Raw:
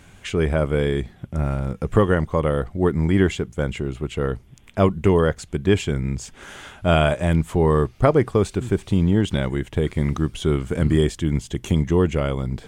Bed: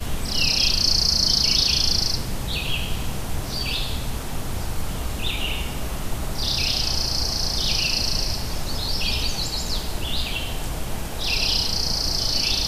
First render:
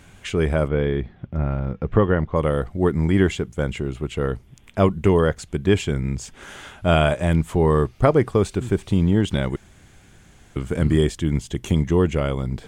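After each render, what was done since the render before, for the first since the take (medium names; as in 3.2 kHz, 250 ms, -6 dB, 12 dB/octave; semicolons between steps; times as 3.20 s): 0.68–2.36 s: distance through air 260 m; 9.56–10.56 s: room tone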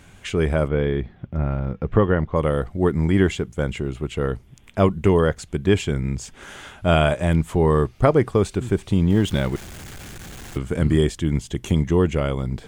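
9.10–10.58 s: jump at every zero crossing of -33.5 dBFS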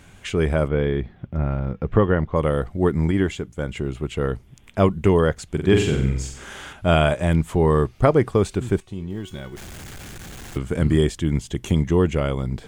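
3.11–3.76 s: feedback comb 290 Hz, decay 0.15 s, mix 40%; 5.48–6.73 s: flutter echo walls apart 7.9 m, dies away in 0.63 s; 8.80–9.57 s: feedback comb 370 Hz, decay 0.39 s, mix 80%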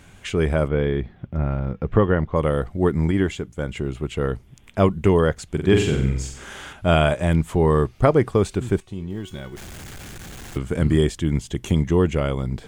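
no audible change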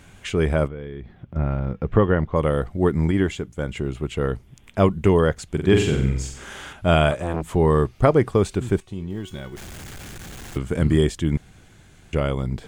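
0.67–1.36 s: compression 3:1, threshold -34 dBFS; 7.11–7.52 s: transformer saturation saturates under 700 Hz; 11.37–12.13 s: room tone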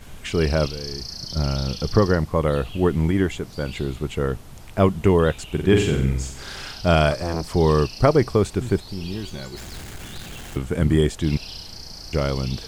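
add bed -15 dB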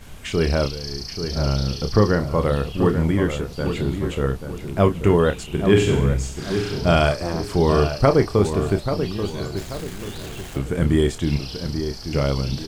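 doubling 29 ms -8.5 dB; on a send: filtered feedback delay 835 ms, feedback 39%, low-pass 2 kHz, level -8 dB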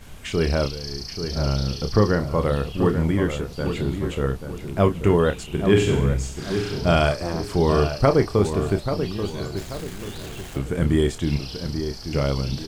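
trim -1.5 dB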